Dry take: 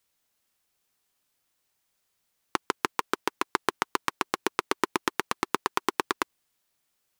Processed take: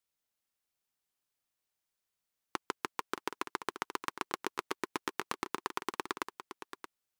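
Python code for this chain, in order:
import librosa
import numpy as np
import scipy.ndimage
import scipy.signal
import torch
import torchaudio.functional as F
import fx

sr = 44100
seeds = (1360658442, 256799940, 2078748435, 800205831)

p1 = fx.level_steps(x, sr, step_db=18)
p2 = p1 + fx.echo_single(p1, sr, ms=625, db=-10.5, dry=0)
y = p2 * 10.0 ** (2.0 / 20.0)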